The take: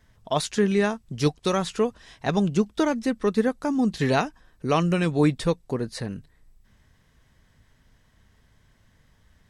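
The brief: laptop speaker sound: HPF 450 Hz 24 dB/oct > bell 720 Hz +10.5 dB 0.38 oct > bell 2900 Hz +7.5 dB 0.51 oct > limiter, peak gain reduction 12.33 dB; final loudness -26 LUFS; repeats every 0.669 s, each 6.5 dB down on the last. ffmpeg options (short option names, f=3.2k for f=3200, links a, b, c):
-af "highpass=f=450:w=0.5412,highpass=f=450:w=1.3066,equalizer=f=720:t=o:w=0.38:g=10.5,equalizer=f=2.9k:t=o:w=0.51:g=7.5,aecho=1:1:669|1338|2007|2676|3345|4014:0.473|0.222|0.105|0.0491|0.0231|0.0109,volume=3.5dB,alimiter=limit=-14.5dB:level=0:latency=1"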